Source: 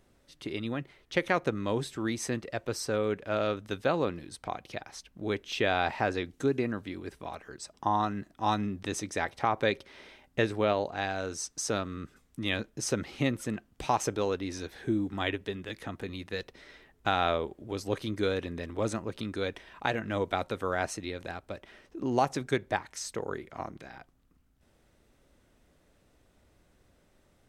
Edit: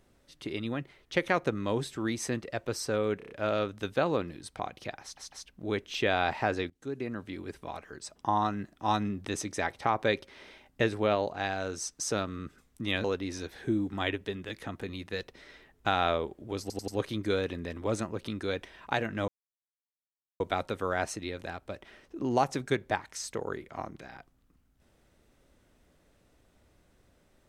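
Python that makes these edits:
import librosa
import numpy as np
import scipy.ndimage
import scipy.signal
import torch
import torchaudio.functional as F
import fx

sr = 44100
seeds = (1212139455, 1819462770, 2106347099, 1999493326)

y = fx.edit(x, sr, fx.stutter(start_s=3.18, slice_s=0.03, count=5),
    fx.stutter(start_s=4.9, slice_s=0.15, count=3),
    fx.fade_in_from(start_s=6.28, length_s=0.71, floor_db=-21.0),
    fx.cut(start_s=12.62, length_s=1.62),
    fx.stutter(start_s=17.81, slice_s=0.09, count=4),
    fx.insert_silence(at_s=20.21, length_s=1.12), tone=tone)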